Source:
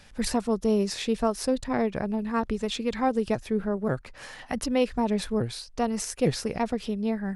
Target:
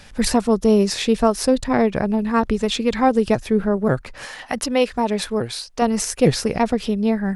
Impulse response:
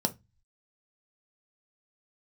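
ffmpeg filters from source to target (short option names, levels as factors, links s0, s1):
-filter_complex "[0:a]asettb=1/sr,asplit=3[s0][s1][s2];[s0]atrim=end=4.254[s3];[s1]atrim=start=4.25:end=5.82,asetpts=PTS-STARTPTS,afade=t=in:d=0.004:c=qsin,afade=t=out:st=1.566:d=0.004:c=qsin,lowshelf=f=240:g=-11[s4];[s2]atrim=start=5.816[s5];[s3][s4]acrossfade=d=0.004:c1=hsin:c2=qsin[s6];[s6][s5]acrossfade=d=0.004:c1=qsin:c2=hsin,volume=2.66"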